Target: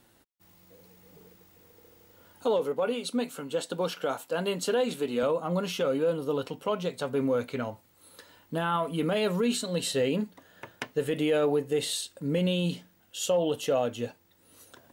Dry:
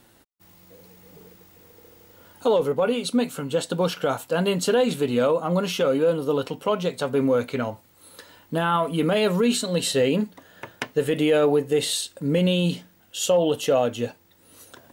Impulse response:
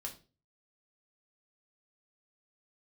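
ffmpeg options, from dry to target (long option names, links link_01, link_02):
-filter_complex "[0:a]asettb=1/sr,asplit=3[link_01][link_02][link_03];[link_01]atrim=end=2.594[link_04];[link_02]atrim=start=2.59:end=5.23,asetpts=PTS-STARTPTS,afade=type=in:duration=0.004:curve=qsin,afade=type=out:start_time=2.636:duration=0.004:curve=qsin,highpass=210[link_05];[link_03]atrim=start=5.226[link_06];[link_04][link_05]acrossfade=duration=0.004:curve1=hsin:curve2=qsin[link_07];[link_07][link_06]acrossfade=duration=0.004:curve1=qsin:curve2=hsin,volume=-6dB"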